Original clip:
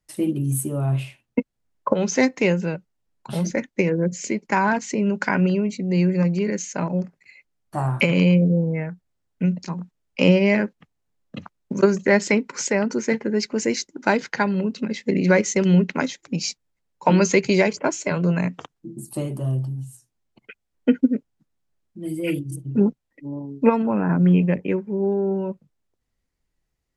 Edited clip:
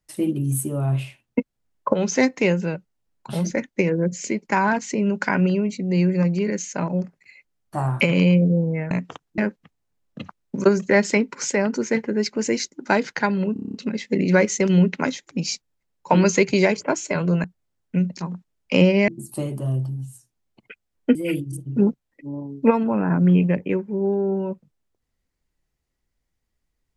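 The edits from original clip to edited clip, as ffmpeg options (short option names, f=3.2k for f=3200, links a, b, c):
-filter_complex "[0:a]asplit=13[a][b][c][d][e][f][g][h][i][j][k][l][m];[a]atrim=end=8.912[n];[b]atrim=start=18.398:end=18.872[o];[c]atrim=start=10.548:end=14.732[p];[d]atrim=start=14.698:end=14.732[q];[e]atrim=start=14.698:end=14.732[r];[f]atrim=start=14.698:end=14.732[s];[g]atrim=start=14.698:end=14.732[t];[h]atrim=start=14.698:end=14.732[u];[i]atrim=start=14.698:end=14.732[v];[j]atrim=start=14.698:end=18.402[w];[k]atrim=start=8.908:end=10.552[x];[l]atrim=start=18.868:end=20.942[y];[m]atrim=start=22.138[z];[n][o]acrossfade=d=0.004:c1=hsin:c2=hsin[aa];[aa][p]acrossfade=d=0.004:c1=hsin:c2=hsin[ab];[ab][q]acrossfade=d=0.004:c1=hsin:c2=hsin[ac];[ac][r]acrossfade=d=0.004:c1=hsin:c2=hsin[ad];[ad][s]acrossfade=d=0.004:c1=hsin:c2=hsin[ae];[ae][t]acrossfade=d=0.004:c1=hsin:c2=hsin[af];[af][u]acrossfade=d=0.004:c1=hsin:c2=hsin[ag];[ag][v]acrossfade=d=0.004:c1=hsin:c2=hsin[ah];[ah][w]acrossfade=d=0.004:c1=hsin:c2=hsin[ai];[ai][x]acrossfade=d=0.004:c1=hsin:c2=hsin[aj];[aj][y]acrossfade=d=0.004:c1=hsin:c2=hsin[ak];[ak][z]acrossfade=d=0.004:c1=hsin:c2=hsin"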